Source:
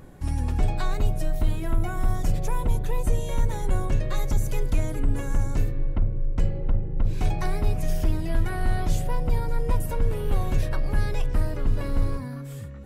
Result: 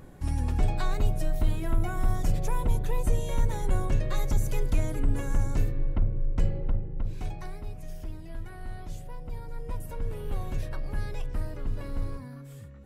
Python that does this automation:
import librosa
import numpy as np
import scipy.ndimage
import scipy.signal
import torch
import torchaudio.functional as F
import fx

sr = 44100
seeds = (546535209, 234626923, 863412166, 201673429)

y = fx.gain(x, sr, db=fx.line((6.54, -2.0), (7.65, -14.5), (9.2, -14.5), (10.17, -8.0)))